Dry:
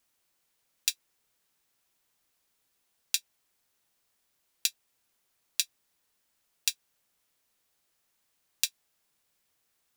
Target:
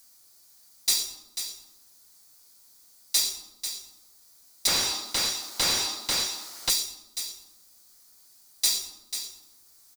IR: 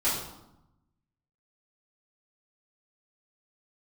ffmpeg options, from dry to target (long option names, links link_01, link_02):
-filter_complex "[0:a]firequalizer=gain_entry='entry(1600,0);entry(2900,-4);entry(4400,12)':delay=0.05:min_phase=1,asoftclip=type=tanh:threshold=-11.5dB[link_01];[1:a]atrim=start_sample=2205[link_02];[link_01][link_02]afir=irnorm=-1:irlink=0,acompressor=mode=upward:threshold=-43dB:ratio=2.5,aecho=1:1:492:0.335,asettb=1/sr,asplit=3[link_03][link_04][link_05];[link_03]atrim=end=4.674[link_06];[link_04]atrim=start=4.67:end=6.7,asetpts=PTS-STARTPTS,afade=type=in:duration=0.004:curve=qsin,afade=type=out:start_time=2.026:duration=0.004:curve=qsin,asplit=2[link_07][link_08];[link_08]highpass=frequency=720:poles=1,volume=32dB,asoftclip=type=tanh:threshold=-3.5dB[link_09];[link_07][link_09]amix=inputs=2:normalize=0,lowpass=frequency=2100:poles=1,volume=-6dB[link_10];[link_05]atrim=start=6.696[link_11];[link_06][link_10]acrossfade=duration=0.004:curve1=hsin:curve2=qsin[link_12];[link_12][link_11]acrossfade=duration=0.004:curve1=qsin:curve2=hsin,volume=-6.5dB"